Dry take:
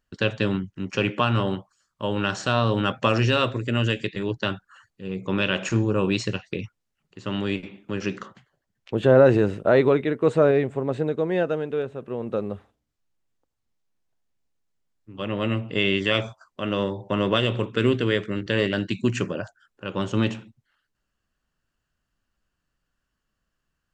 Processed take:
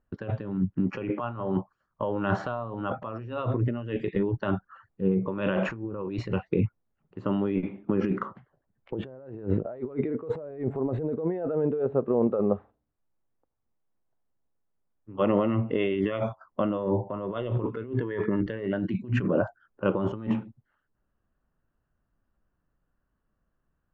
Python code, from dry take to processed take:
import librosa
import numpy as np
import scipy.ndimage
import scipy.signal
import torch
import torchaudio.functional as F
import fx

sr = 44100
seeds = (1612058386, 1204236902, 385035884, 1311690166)

y = fx.low_shelf(x, sr, hz=400.0, db=-5.0, at=(12.27, 15.96))
y = fx.small_body(y, sr, hz=(950.0, 1700.0), ring_ms=45, db=13, at=(17.93, 18.4))
y = scipy.signal.sosfilt(scipy.signal.butter(2, 1100.0, 'lowpass', fs=sr, output='sos'), y)
y = fx.over_compress(y, sr, threshold_db=-31.0, ratio=-1.0)
y = fx.noise_reduce_blind(y, sr, reduce_db=7)
y = F.gain(torch.from_numpy(y), 4.0).numpy()